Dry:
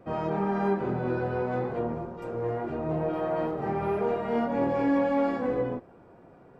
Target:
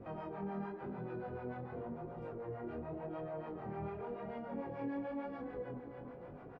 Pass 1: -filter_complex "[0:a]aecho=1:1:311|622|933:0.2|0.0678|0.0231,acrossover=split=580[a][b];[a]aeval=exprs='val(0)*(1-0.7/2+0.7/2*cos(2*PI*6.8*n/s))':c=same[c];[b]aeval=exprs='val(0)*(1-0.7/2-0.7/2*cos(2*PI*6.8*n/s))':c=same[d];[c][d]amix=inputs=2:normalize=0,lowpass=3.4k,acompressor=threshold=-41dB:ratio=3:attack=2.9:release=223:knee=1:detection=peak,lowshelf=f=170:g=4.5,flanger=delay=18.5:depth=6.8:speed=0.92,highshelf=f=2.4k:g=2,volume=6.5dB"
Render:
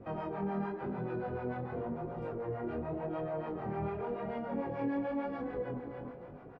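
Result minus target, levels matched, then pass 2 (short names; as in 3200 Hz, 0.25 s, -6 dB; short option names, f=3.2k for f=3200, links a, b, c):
compressor: peak gain reduction -6 dB
-filter_complex "[0:a]aecho=1:1:311|622|933:0.2|0.0678|0.0231,acrossover=split=580[a][b];[a]aeval=exprs='val(0)*(1-0.7/2+0.7/2*cos(2*PI*6.8*n/s))':c=same[c];[b]aeval=exprs='val(0)*(1-0.7/2-0.7/2*cos(2*PI*6.8*n/s))':c=same[d];[c][d]amix=inputs=2:normalize=0,lowpass=3.4k,acompressor=threshold=-50dB:ratio=3:attack=2.9:release=223:knee=1:detection=peak,lowshelf=f=170:g=4.5,flanger=delay=18.5:depth=6.8:speed=0.92,highshelf=f=2.4k:g=2,volume=6.5dB"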